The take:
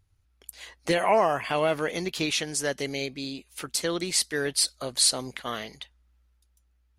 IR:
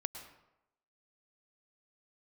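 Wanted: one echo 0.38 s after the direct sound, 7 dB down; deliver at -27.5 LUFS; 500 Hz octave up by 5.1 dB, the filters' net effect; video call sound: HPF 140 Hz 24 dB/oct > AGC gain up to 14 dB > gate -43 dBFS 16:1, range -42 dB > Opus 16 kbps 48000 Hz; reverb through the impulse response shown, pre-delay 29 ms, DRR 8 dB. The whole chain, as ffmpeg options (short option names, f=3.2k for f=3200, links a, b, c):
-filter_complex "[0:a]equalizer=f=500:t=o:g=6.5,aecho=1:1:380:0.447,asplit=2[a][b];[1:a]atrim=start_sample=2205,adelay=29[c];[b][c]afir=irnorm=-1:irlink=0,volume=-7.5dB[d];[a][d]amix=inputs=2:normalize=0,highpass=f=140:w=0.5412,highpass=f=140:w=1.3066,dynaudnorm=m=14dB,agate=range=-42dB:threshold=-43dB:ratio=16,volume=-4dB" -ar 48000 -c:a libopus -b:a 16k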